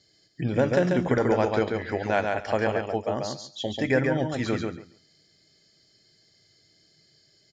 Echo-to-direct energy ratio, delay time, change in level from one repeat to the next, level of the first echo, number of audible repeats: -4.0 dB, 139 ms, -16.0 dB, -4.0 dB, 2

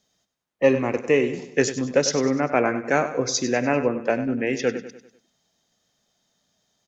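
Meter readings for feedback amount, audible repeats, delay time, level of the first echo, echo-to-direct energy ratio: 45%, 4, 98 ms, -12.0 dB, -11.0 dB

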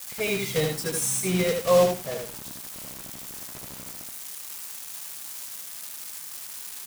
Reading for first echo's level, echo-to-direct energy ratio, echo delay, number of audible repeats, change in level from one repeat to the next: -4.0 dB, -4.0 dB, 77 ms, 2, -13.5 dB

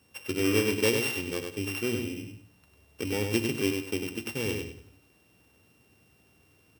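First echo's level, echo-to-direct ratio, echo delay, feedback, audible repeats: -5.0 dB, -4.5 dB, 99 ms, 27%, 3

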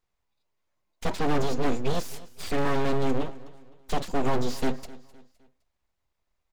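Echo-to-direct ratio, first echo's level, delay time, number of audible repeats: -19.0 dB, -19.5 dB, 257 ms, 2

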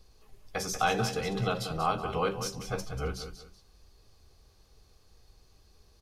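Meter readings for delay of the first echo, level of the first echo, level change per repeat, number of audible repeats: 188 ms, -10.0 dB, -10.5 dB, 2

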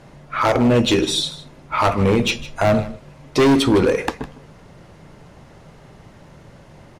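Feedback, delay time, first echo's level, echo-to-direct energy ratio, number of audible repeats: no regular repeats, 156 ms, -16.5 dB, -16.5 dB, 1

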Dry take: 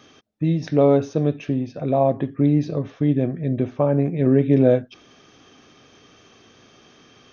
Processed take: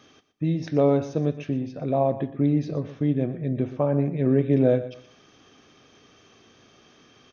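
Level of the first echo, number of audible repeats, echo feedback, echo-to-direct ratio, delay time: -14.0 dB, 2, 25%, -13.5 dB, 120 ms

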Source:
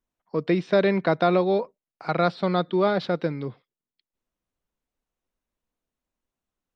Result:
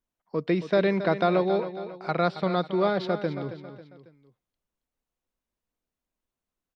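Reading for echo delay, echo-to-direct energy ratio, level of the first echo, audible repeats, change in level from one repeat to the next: 273 ms, -10.5 dB, -11.5 dB, 3, -7.5 dB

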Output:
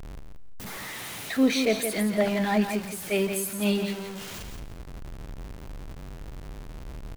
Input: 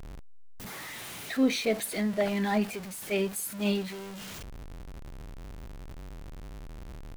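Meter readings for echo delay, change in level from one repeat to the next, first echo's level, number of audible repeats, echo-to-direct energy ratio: 171 ms, -14.0 dB, -7.5 dB, 2, -7.5 dB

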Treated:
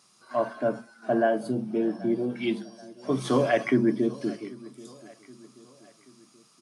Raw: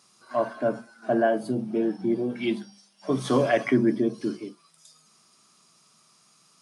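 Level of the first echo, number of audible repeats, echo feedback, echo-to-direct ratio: -21.0 dB, 3, 48%, -20.0 dB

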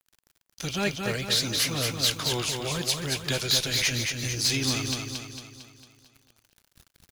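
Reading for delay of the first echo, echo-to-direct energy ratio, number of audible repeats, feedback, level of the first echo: 226 ms, -3.0 dB, 6, 51%, -4.5 dB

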